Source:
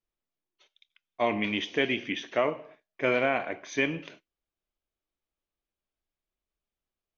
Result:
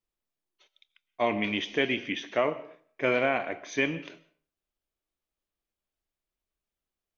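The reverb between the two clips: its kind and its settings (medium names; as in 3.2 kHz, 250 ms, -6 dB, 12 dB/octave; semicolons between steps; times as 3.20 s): algorithmic reverb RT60 0.47 s, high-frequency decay 0.7×, pre-delay 90 ms, DRR 19.5 dB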